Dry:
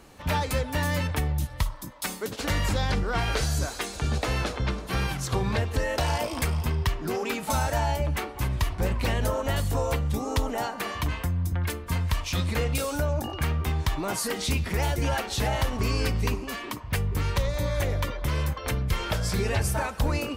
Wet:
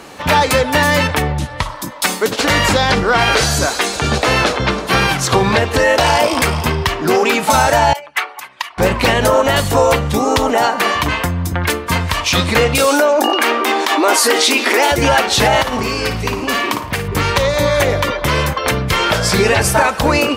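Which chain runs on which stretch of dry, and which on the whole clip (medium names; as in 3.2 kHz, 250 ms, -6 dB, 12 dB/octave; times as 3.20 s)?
1.22–1.69 s: low-pass 11 kHz 24 dB/octave + treble shelf 4.7 kHz -8.5 dB
7.93–8.78 s: resonances exaggerated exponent 1.5 + high-pass 1.3 kHz
12.87–14.92 s: brick-wall FIR high-pass 230 Hz + level flattener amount 50%
15.61–17.08 s: compression 5:1, threshold -28 dBFS + flutter echo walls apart 9.5 m, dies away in 0.36 s
whole clip: high-pass 340 Hz 6 dB/octave; treble shelf 8.7 kHz -8 dB; loudness maximiser +19.5 dB; trim -1 dB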